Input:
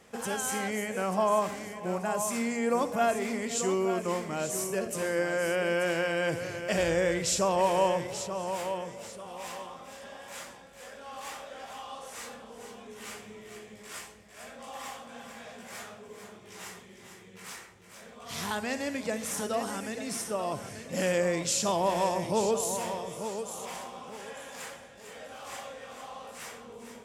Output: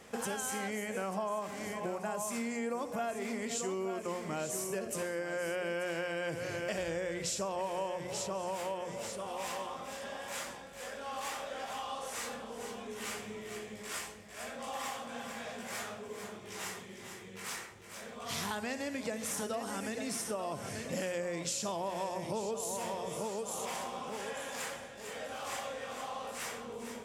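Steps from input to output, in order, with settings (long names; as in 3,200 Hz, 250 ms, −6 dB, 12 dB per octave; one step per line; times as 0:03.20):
mains-hum notches 60/120/180 Hz
downward compressor, threshold −37 dBFS, peak gain reduction 15 dB
level +3 dB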